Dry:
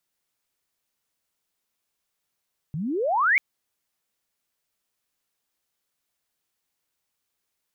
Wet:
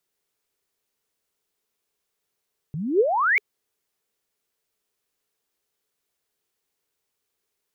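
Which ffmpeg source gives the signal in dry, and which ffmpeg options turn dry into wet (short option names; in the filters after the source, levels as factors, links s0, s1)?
-f lavfi -i "aevalsrc='pow(10,(-27+11.5*t/0.64)/20)*sin(2*PI*140*0.64/log(2300/140)*(exp(log(2300/140)*t/0.64)-1))':d=0.64:s=44100"
-af "equalizer=f=420:w=3.8:g=10.5"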